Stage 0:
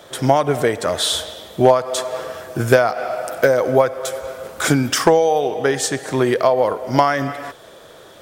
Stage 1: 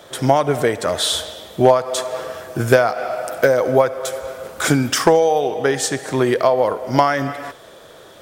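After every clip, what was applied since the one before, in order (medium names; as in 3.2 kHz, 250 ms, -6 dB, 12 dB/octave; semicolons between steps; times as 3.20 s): thinning echo 74 ms, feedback 57%, level -22 dB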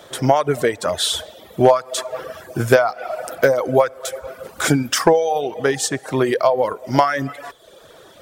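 reverb removal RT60 0.79 s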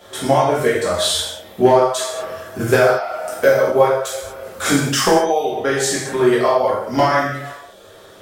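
gated-style reverb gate 260 ms falling, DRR -8 dB; trim -6 dB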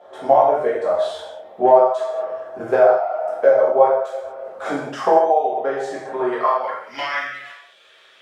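band-pass sweep 700 Hz -> 2.5 kHz, 6.19–6.97 s; trim +4 dB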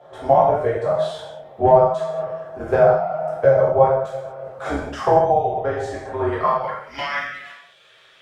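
octave divider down 2 oct, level -2 dB; trim -1 dB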